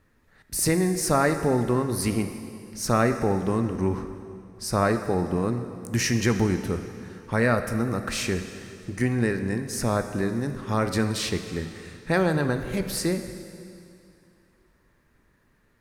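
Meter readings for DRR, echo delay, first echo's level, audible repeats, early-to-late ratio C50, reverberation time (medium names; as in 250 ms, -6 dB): 8.0 dB, no echo, no echo, no echo, 9.0 dB, 2.6 s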